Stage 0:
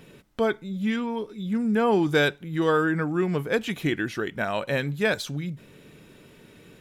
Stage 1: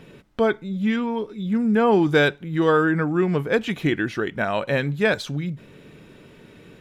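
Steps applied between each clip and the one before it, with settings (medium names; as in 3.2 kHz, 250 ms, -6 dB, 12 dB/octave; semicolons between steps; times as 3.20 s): low-pass 3.8 kHz 6 dB/octave; trim +4 dB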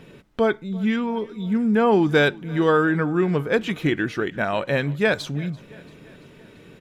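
feedback delay 339 ms, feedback 60%, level -23 dB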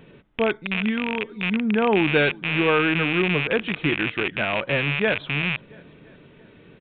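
rattle on loud lows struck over -35 dBFS, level -10 dBFS; resampled via 8 kHz; trim -2.5 dB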